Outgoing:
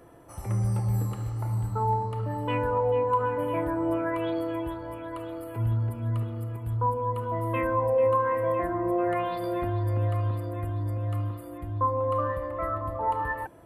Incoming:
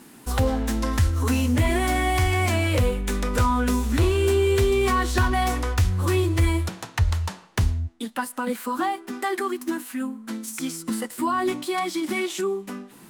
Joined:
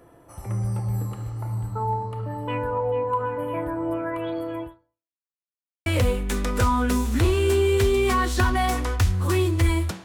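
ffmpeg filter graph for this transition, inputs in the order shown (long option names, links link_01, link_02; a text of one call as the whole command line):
ffmpeg -i cue0.wav -i cue1.wav -filter_complex "[0:a]apad=whole_dur=10.04,atrim=end=10.04,asplit=2[link_01][link_02];[link_01]atrim=end=5.28,asetpts=PTS-STARTPTS,afade=type=out:start_time=4.63:duration=0.65:curve=exp[link_03];[link_02]atrim=start=5.28:end=5.86,asetpts=PTS-STARTPTS,volume=0[link_04];[1:a]atrim=start=2.64:end=6.82,asetpts=PTS-STARTPTS,afade=type=in:duration=0.004:curve=hsin[link_05];[link_03][link_04][link_05]concat=n=3:v=0:a=1" out.wav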